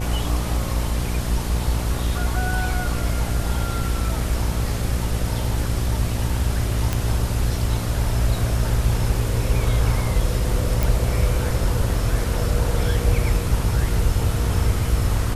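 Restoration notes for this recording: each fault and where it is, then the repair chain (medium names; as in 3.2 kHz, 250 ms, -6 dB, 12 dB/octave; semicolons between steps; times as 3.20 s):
buzz 60 Hz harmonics 12 -25 dBFS
6.93 s: pop
10.83 s: pop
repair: de-click; de-hum 60 Hz, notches 12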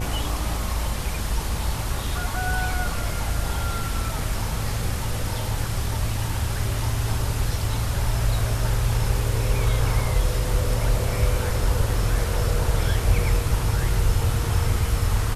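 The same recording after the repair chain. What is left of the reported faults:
nothing left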